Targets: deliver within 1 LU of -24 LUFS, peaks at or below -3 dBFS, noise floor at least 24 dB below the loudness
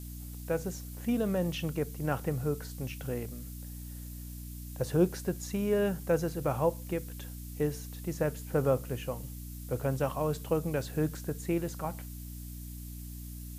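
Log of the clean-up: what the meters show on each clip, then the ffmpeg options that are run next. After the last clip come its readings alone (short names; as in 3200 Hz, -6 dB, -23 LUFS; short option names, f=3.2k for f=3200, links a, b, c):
hum 60 Hz; harmonics up to 300 Hz; hum level -40 dBFS; noise floor -43 dBFS; noise floor target -58 dBFS; loudness -34.0 LUFS; peak -13.5 dBFS; loudness target -24.0 LUFS
-> -af "bandreject=f=60:t=h:w=6,bandreject=f=120:t=h:w=6,bandreject=f=180:t=h:w=6,bandreject=f=240:t=h:w=6,bandreject=f=300:t=h:w=6"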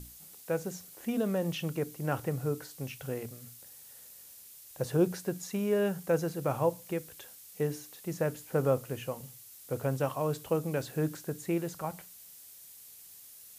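hum none; noise floor -52 dBFS; noise floor target -57 dBFS
-> -af "afftdn=nr=6:nf=-52"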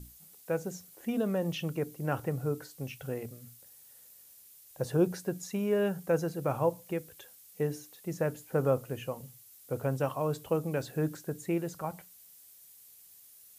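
noise floor -56 dBFS; noise floor target -58 dBFS
-> -af "afftdn=nr=6:nf=-56"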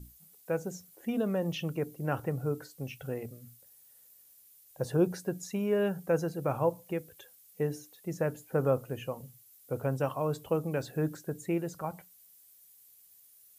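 noise floor -59 dBFS; loudness -33.5 LUFS; peak -15.0 dBFS; loudness target -24.0 LUFS
-> -af "volume=9.5dB"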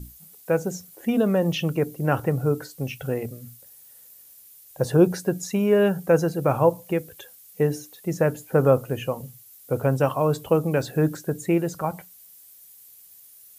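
loudness -24.0 LUFS; peak -5.5 dBFS; noise floor -50 dBFS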